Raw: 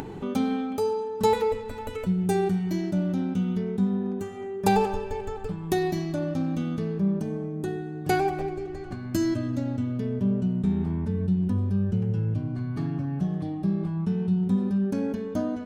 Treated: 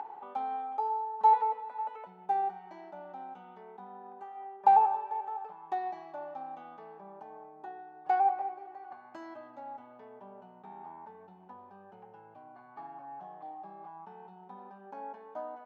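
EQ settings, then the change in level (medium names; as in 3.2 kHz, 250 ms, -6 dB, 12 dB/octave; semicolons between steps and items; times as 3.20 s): ladder band-pass 890 Hz, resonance 75%; +4.0 dB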